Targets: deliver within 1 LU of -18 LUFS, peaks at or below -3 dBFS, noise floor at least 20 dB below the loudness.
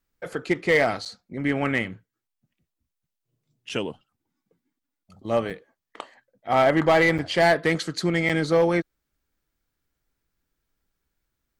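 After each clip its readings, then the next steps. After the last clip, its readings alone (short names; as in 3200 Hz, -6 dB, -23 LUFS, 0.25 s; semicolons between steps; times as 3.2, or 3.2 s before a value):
clipped 0.4%; flat tops at -12.0 dBFS; dropouts 5; longest dropout 6.6 ms; loudness -23.0 LUFS; peak -12.0 dBFS; loudness target -18.0 LUFS
-> clip repair -12 dBFS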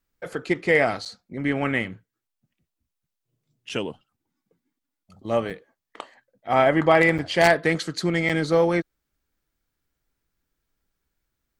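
clipped 0.0%; dropouts 5; longest dropout 6.6 ms
-> interpolate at 1.05/3.69/5.5/7.18/8.29, 6.6 ms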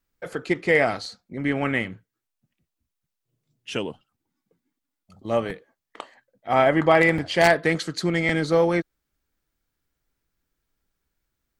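dropouts 0; loudness -22.0 LUFS; peak -3.0 dBFS; loudness target -18.0 LUFS
-> gain +4 dB; limiter -3 dBFS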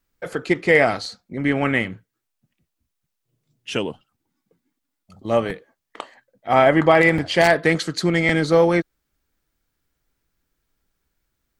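loudness -18.5 LUFS; peak -3.0 dBFS; noise floor -79 dBFS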